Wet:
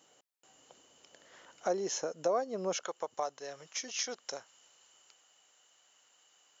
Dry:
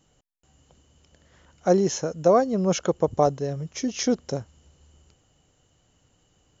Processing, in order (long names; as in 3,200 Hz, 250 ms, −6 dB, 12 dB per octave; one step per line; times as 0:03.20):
high-pass filter 430 Hz 12 dB per octave, from 0:02.83 990 Hz
downward compressor 2 to 1, threshold −42 dBFS, peak gain reduction 14.5 dB
level +3 dB